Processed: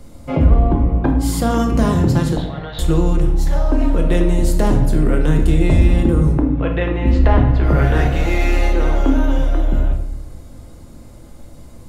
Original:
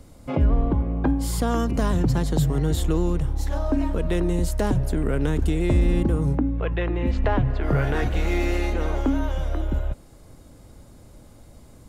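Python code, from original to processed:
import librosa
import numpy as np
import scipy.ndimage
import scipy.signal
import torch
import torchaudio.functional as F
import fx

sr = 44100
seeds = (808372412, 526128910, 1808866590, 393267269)

y = fx.ellip_bandpass(x, sr, low_hz=590.0, high_hz=3800.0, order=3, stop_db=40, at=(2.36, 2.79))
y = fx.room_shoebox(y, sr, seeds[0], volume_m3=230.0, walls='mixed', distance_m=0.84)
y = F.gain(torch.from_numpy(y), 4.0).numpy()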